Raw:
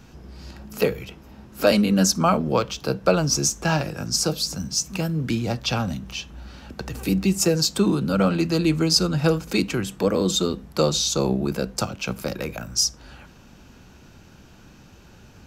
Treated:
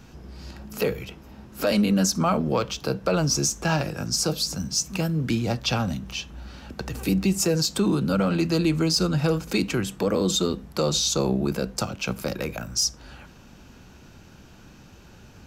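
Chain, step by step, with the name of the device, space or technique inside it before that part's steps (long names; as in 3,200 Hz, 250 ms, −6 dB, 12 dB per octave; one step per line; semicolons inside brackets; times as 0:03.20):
soft clipper into limiter (soft clipping −6.5 dBFS, distortion −26 dB; brickwall limiter −13.5 dBFS, peak gain reduction 5.5 dB)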